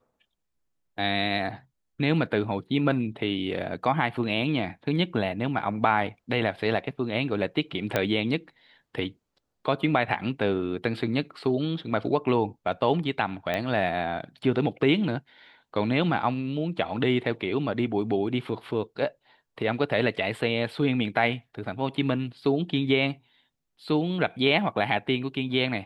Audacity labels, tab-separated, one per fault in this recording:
7.960000	7.960000	pop -10 dBFS
13.540000	13.540000	pop -15 dBFS

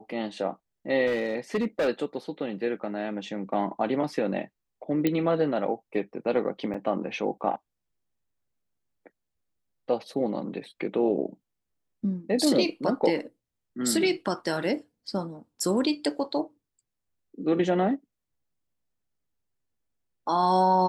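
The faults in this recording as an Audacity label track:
1.060000	1.890000	clipped -21.5 dBFS
5.070000	5.070000	pop -12 dBFS
6.740000	6.740000	gap 4.2 ms

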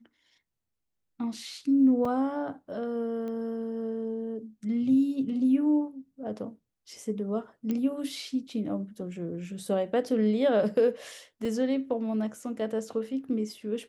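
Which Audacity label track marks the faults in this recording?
2.050000	2.050000	gap 3.4 ms
3.280000	3.280000	pop -28 dBFS
7.710000	7.710000	pop -19 dBFS
11.450000	11.450000	gap 2.6 ms

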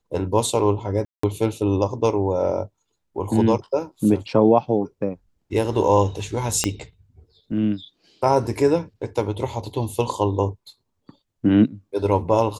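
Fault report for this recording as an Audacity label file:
1.050000	1.230000	gap 0.184 s
6.640000	6.640000	pop -5 dBFS

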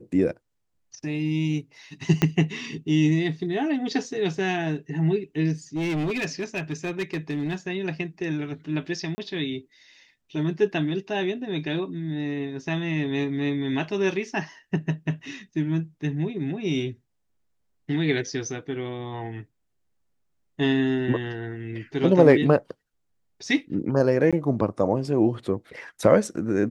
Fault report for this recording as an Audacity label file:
2.220000	2.220000	pop -7 dBFS
5.760000	7.550000	clipped -23 dBFS
9.150000	9.180000	gap 30 ms
24.310000	24.330000	gap 16 ms

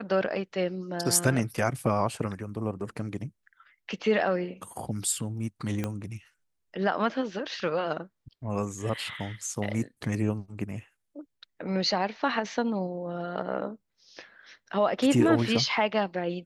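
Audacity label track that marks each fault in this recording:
5.840000	5.840000	pop -16 dBFS

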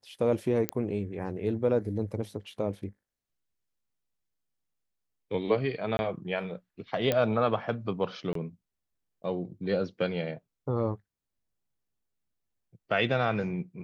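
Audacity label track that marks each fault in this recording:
0.690000	0.690000	pop -12 dBFS
5.970000	5.990000	gap 21 ms
7.120000	7.120000	pop -13 dBFS
8.330000	8.350000	gap 23 ms

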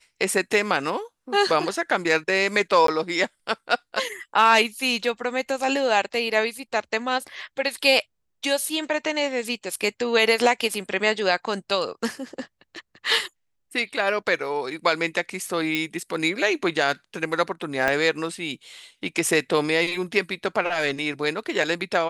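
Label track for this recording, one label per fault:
2.870000	2.880000	gap 13 ms
15.750000	15.750000	pop -11 dBFS
17.880000	17.880000	pop -9 dBFS

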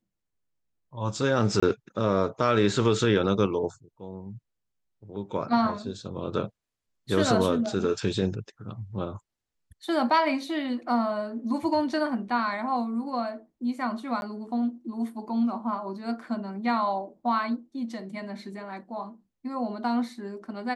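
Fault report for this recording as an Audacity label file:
1.600000	1.620000	gap 25 ms
14.210000	14.220000	gap 11 ms

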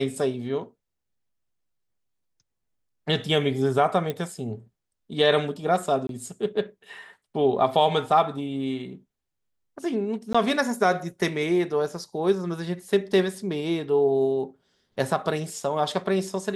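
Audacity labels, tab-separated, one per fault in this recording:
4.100000	4.100000	pop -16 dBFS
6.070000	6.090000	gap 22 ms
10.330000	10.350000	gap 15 ms

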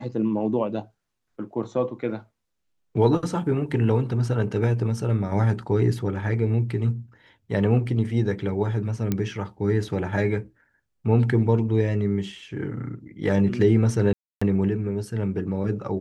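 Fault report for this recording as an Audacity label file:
9.120000	9.120000	pop -11 dBFS
14.130000	14.410000	gap 0.285 s

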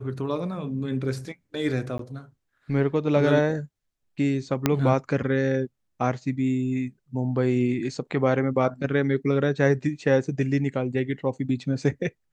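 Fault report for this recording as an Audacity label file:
1.980000	1.990000	gap
4.660000	4.660000	pop -5 dBFS

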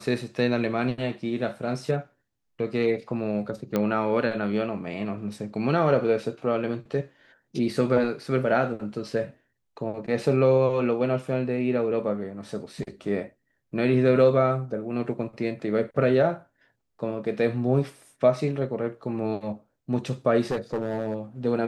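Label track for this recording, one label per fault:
3.760000	3.760000	pop -12 dBFS
20.500000	21.150000	clipped -22.5 dBFS

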